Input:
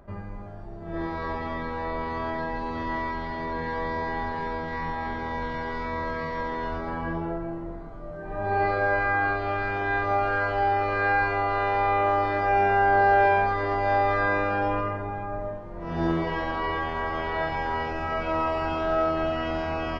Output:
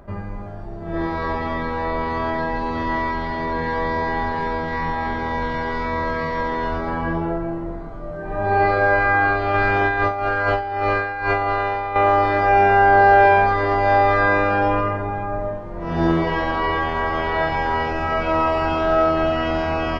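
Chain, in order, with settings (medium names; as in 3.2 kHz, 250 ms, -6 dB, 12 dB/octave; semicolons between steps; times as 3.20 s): 9.54–11.96 s: compressor with a negative ratio -27 dBFS, ratio -0.5; trim +7 dB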